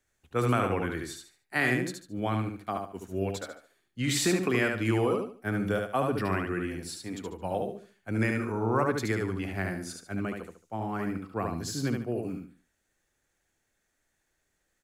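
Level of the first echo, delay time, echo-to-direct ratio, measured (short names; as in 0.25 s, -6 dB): -4.0 dB, 73 ms, -3.5 dB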